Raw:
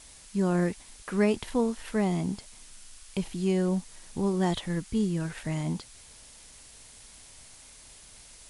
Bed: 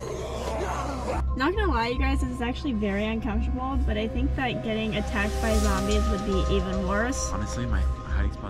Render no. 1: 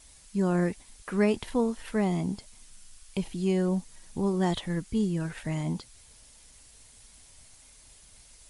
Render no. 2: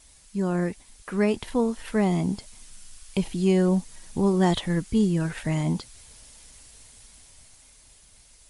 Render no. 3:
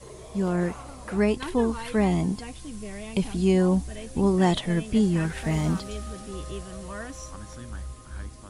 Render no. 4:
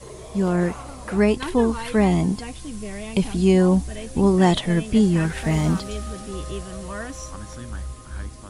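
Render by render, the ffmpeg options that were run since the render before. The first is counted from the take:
ffmpeg -i in.wav -af "afftdn=noise_reduction=6:noise_floor=-52" out.wav
ffmpeg -i in.wav -af "dynaudnorm=framelen=270:gausssize=13:maxgain=5.5dB" out.wav
ffmpeg -i in.wav -i bed.wav -filter_complex "[1:a]volume=-11.5dB[link_01];[0:a][link_01]amix=inputs=2:normalize=0" out.wav
ffmpeg -i in.wav -af "volume=4.5dB" out.wav

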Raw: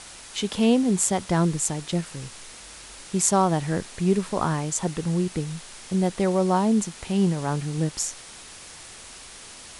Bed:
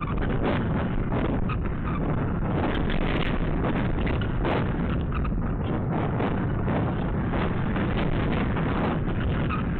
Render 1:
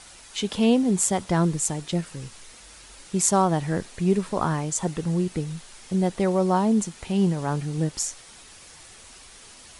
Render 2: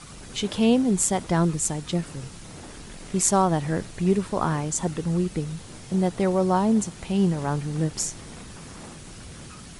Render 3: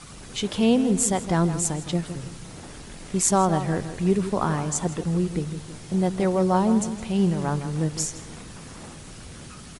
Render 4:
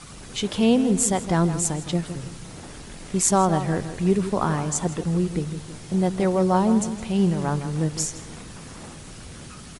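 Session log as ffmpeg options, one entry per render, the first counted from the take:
ffmpeg -i in.wav -af "afftdn=noise_reduction=6:noise_floor=-44" out.wav
ffmpeg -i in.wav -i bed.wav -filter_complex "[1:a]volume=-17.5dB[link_01];[0:a][link_01]amix=inputs=2:normalize=0" out.wav
ffmpeg -i in.wav -filter_complex "[0:a]asplit=2[link_01][link_02];[link_02]adelay=162,lowpass=frequency=3300:poles=1,volume=-11dB,asplit=2[link_03][link_04];[link_04]adelay=162,lowpass=frequency=3300:poles=1,volume=0.42,asplit=2[link_05][link_06];[link_06]adelay=162,lowpass=frequency=3300:poles=1,volume=0.42,asplit=2[link_07][link_08];[link_08]adelay=162,lowpass=frequency=3300:poles=1,volume=0.42[link_09];[link_01][link_03][link_05][link_07][link_09]amix=inputs=5:normalize=0" out.wav
ffmpeg -i in.wav -af "volume=1dB" out.wav

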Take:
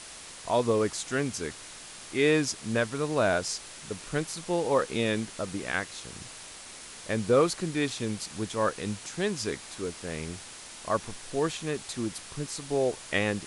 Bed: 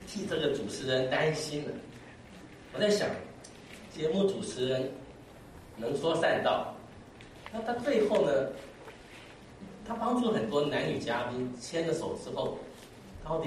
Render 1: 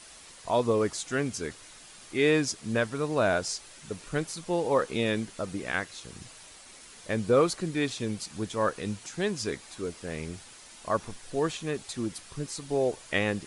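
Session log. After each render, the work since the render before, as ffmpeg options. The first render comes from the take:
ffmpeg -i in.wav -af "afftdn=noise_reduction=7:noise_floor=-45" out.wav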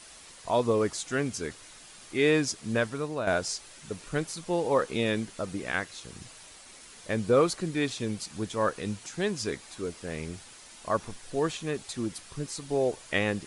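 ffmpeg -i in.wav -filter_complex "[0:a]asplit=2[link_01][link_02];[link_01]atrim=end=3.27,asetpts=PTS-STARTPTS,afade=type=out:start_time=2.87:duration=0.4:silence=0.354813[link_03];[link_02]atrim=start=3.27,asetpts=PTS-STARTPTS,afade=type=in:duration=0.004:curve=hsin:silence=0.354813[link_04];[link_03][link_04]concat=n=2:v=0:a=1" out.wav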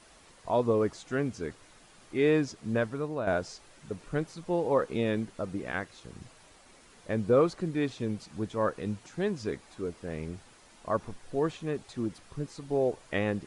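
ffmpeg -i in.wav -filter_complex "[0:a]acrossover=split=7100[link_01][link_02];[link_02]acompressor=threshold=-49dB:ratio=4:attack=1:release=60[link_03];[link_01][link_03]amix=inputs=2:normalize=0,highshelf=frequency=2000:gain=-11.5" out.wav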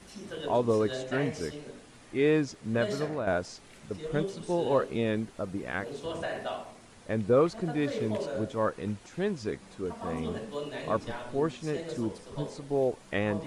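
ffmpeg -i in.wav -i bed.wav -filter_complex "[1:a]volume=-7.5dB[link_01];[0:a][link_01]amix=inputs=2:normalize=0" out.wav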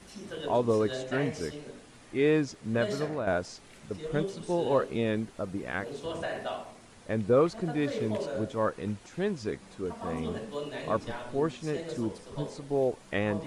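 ffmpeg -i in.wav -af anull out.wav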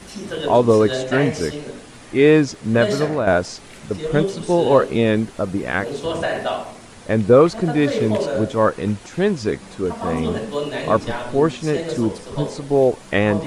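ffmpeg -i in.wav -af "volume=12dB,alimiter=limit=-2dB:level=0:latency=1" out.wav

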